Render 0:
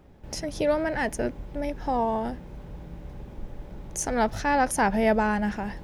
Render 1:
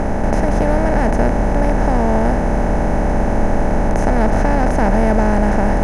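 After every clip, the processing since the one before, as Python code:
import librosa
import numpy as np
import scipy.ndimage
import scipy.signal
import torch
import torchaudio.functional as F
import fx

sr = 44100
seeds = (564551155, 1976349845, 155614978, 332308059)

y = fx.bin_compress(x, sr, power=0.2)
y = fx.riaa(y, sr, side='playback')
y = F.gain(torch.from_numpy(y), -2.5).numpy()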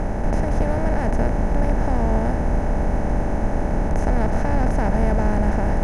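y = fx.octave_divider(x, sr, octaves=2, level_db=3.0)
y = F.gain(torch.from_numpy(y), -7.5).numpy()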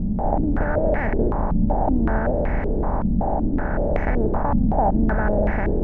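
y = fx.filter_held_lowpass(x, sr, hz=5.3, low_hz=210.0, high_hz=2100.0)
y = F.gain(torch.from_numpy(y), -2.5).numpy()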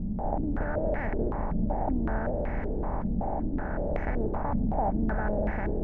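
y = fx.echo_feedback(x, sr, ms=387, feedback_pct=53, wet_db=-15.5)
y = F.gain(torch.from_numpy(y), -8.5).numpy()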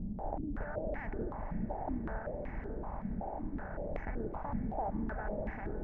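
y = fx.dereverb_blind(x, sr, rt60_s=1.6)
y = fx.echo_diffused(y, sr, ms=481, feedback_pct=48, wet_db=-12.0)
y = F.gain(torch.from_numpy(y), -7.0).numpy()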